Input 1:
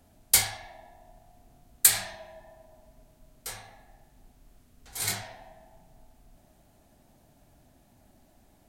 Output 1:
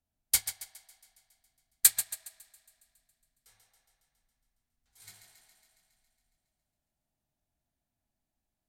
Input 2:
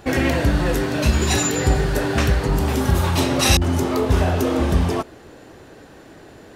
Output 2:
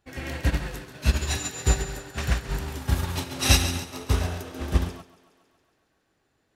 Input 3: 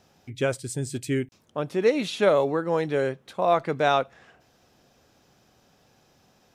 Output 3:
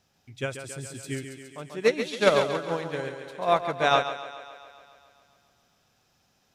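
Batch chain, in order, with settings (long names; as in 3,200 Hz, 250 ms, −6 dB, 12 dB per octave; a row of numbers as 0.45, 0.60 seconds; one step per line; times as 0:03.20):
parametric band 420 Hz −7 dB 2.8 octaves
on a send: feedback echo with a high-pass in the loop 138 ms, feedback 69%, high-pass 170 Hz, level −4.5 dB
on the sum: expander for the loud parts 2.5 to 1, over −30 dBFS
loudness normalisation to −27 LKFS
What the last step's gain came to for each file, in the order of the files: −0.5, 0.0, +7.5 decibels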